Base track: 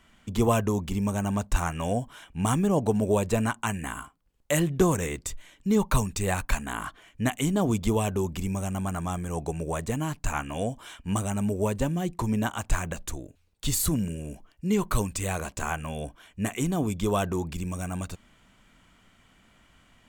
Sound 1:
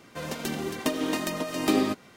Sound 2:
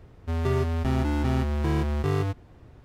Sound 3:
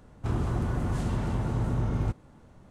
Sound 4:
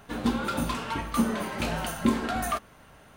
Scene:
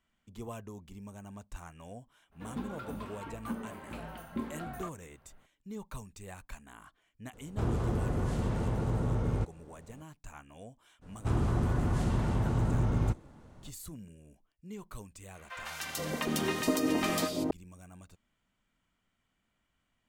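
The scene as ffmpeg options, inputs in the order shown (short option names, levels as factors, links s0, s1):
-filter_complex "[3:a]asplit=2[s0][s1];[0:a]volume=0.106[s2];[4:a]equalizer=f=6300:t=o:w=1.9:g=-12[s3];[s0]equalizer=f=480:w=3.5:g=7[s4];[1:a]acrossover=split=850|3400[s5][s6][s7];[s7]adelay=150[s8];[s5]adelay=470[s9];[s9][s6][s8]amix=inputs=3:normalize=0[s10];[s3]atrim=end=3.16,asetpts=PTS-STARTPTS,volume=0.237,afade=t=in:d=0.02,afade=t=out:st=3.14:d=0.02,adelay=2310[s11];[s4]atrim=end=2.7,asetpts=PTS-STARTPTS,volume=0.708,afade=t=in:d=0.004:c=hsin,afade=t=out:st=2.696:d=0.004:c=hsin,adelay=7330[s12];[s1]atrim=end=2.7,asetpts=PTS-STARTPTS,volume=0.944,afade=t=in:d=0.02,afade=t=out:st=2.68:d=0.02,adelay=11010[s13];[s10]atrim=end=2.16,asetpts=PTS-STARTPTS,afade=t=in:d=0.004:c=hsin,afade=t=out:st=2.156:d=0.004:c=hsin,adelay=15350[s14];[s2][s11][s12][s13][s14]amix=inputs=5:normalize=0"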